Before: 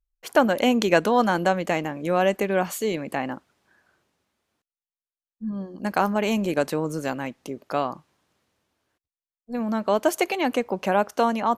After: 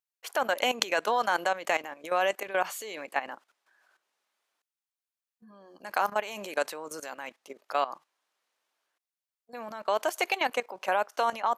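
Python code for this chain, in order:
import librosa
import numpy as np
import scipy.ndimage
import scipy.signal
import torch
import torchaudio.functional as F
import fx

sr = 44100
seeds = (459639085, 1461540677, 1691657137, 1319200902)

y = scipy.signal.sosfilt(scipy.signal.butter(2, 700.0, 'highpass', fs=sr, output='sos'), x)
y = fx.level_steps(y, sr, step_db=14)
y = y * 10.0 ** (3.0 / 20.0)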